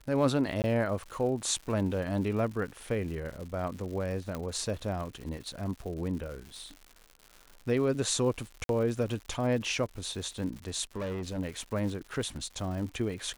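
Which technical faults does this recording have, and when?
crackle 180 per s -39 dBFS
0.62–0.64 s: dropout 19 ms
4.35 s: pop -21 dBFS
8.64–8.69 s: dropout 52 ms
10.96–11.39 s: clipped -31.5 dBFS

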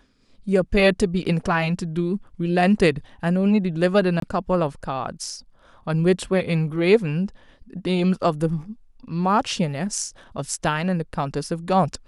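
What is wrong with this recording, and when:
4.20–4.22 s: dropout 23 ms

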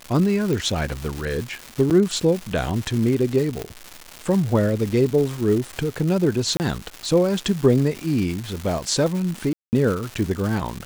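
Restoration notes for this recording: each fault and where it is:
crackle 390 per s -26 dBFS
0.53 s: pop
1.90–1.91 s: dropout 7.9 ms
3.62 s: pop -13 dBFS
6.57–6.60 s: dropout 29 ms
9.53–9.73 s: dropout 199 ms

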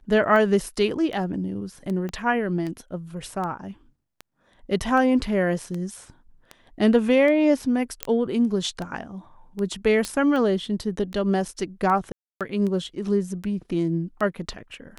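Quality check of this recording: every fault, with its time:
tick 78 rpm -20 dBFS
2.09 s: pop -20 dBFS
8.03 s: pop -6 dBFS
10.05 s: pop -13 dBFS
12.12–12.41 s: dropout 287 ms

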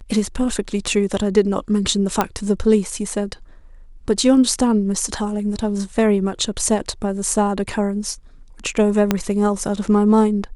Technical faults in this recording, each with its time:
2.21 s: pop -3 dBFS
9.11 s: pop -2 dBFS

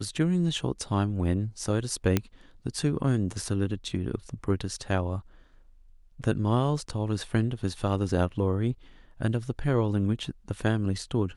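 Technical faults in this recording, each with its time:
2.17 s: pop -9 dBFS

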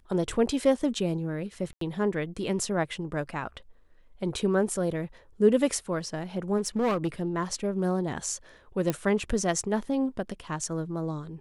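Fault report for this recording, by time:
1.73–1.81 s: dropout 83 ms
6.57–7.08 s: clipped -22.5 dBFS
8.90 s: pop -13 dBFS

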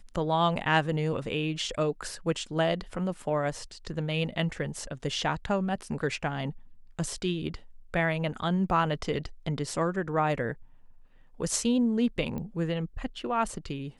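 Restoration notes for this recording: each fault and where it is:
12.38 s: pop -24 dBFS

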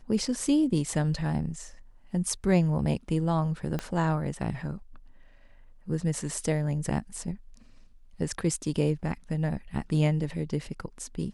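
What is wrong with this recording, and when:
3.79 s: pop -17 dBFS

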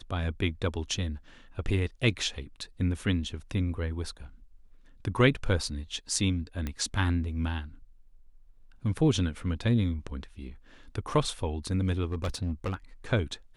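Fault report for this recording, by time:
6.67 s: pop -19 dBFS
12.12–12.74 s: clipped -26.5 dBFS

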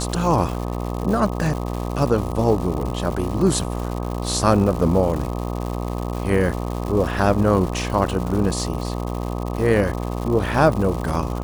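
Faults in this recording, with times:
buzz 60 Hz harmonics 21 -26 dBFS
crackle 240 per s -27 dBFS

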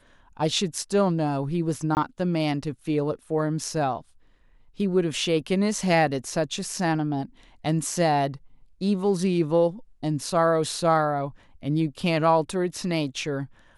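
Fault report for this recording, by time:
1.95–1.97 s: dropout 19 ms

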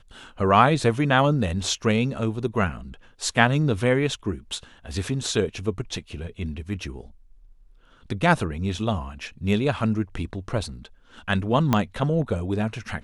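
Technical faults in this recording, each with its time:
11.73 s: pop -7 dBFS

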